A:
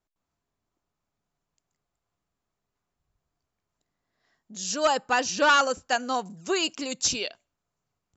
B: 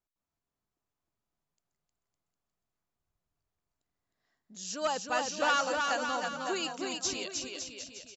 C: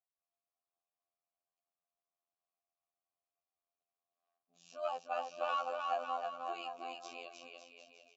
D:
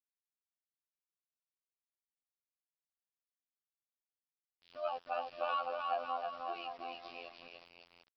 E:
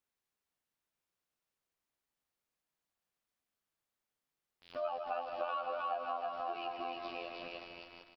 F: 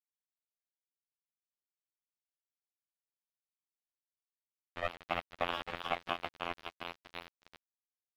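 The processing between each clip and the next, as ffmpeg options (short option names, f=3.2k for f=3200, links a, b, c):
-af "aecho=1:1:310|558|756.4|915.1|1042:0.631|0.398|0.251|0.158|0.1,volume=-8.5dB"
-filter_complex "[0:a]tremolo=f=67:d=0.462,afftfilt=real='hypot(re,im)*cos(PI*b)':imag='0':win_size=2048:overlap=0.75,asplit=3[a][b][c];[a]bandpass=f=730:t=q:w=8,volume=0dB[d];[b]bandpass=f=1.09k:t=q:w=8,volume=-6dB[e];[c]bandpass=f=2.44k:t=q:w=8,volume=-9dB[f];[d][e][f]amix=inputs=3:normalize=0,volume=8dB"
-af "bandreject=f=1.9k:w=11,aresample=11025,aeval=exprs='val(0)*gte(abs(val(0)),0.002)':c=same,aresample=44100"
-af "aecho=1:1:154|308|462|616|770|924:0.355|0.185|0.0959|0.0499|0.0259|0.0135,acompressor=threshold=-48dB:ratio=3,highshelf=f=3.1k:g=-8.5,volume=10.5dB"
-af "aresample=8000,acrusher=bits=4:mix=0:aa=0.5,aresample=44100,aeval=exprs='sgn(val(0))*max(abs(val(0))-0.00158,0)':c=same,volume=5dB"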